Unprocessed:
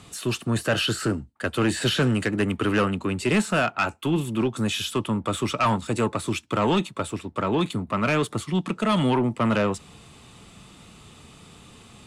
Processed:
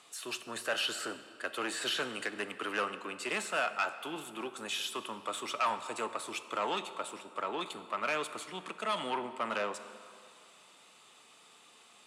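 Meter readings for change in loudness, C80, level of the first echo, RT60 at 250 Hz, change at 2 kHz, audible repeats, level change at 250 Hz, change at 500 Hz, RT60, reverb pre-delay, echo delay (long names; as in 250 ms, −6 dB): −11.0 dB, 12.5 dB, no echo audible, 2.0 s, −7.0 dB, no echo audible, −20.5 dB, −12.0 dB, 2.3 s, 22 ms, no echo audible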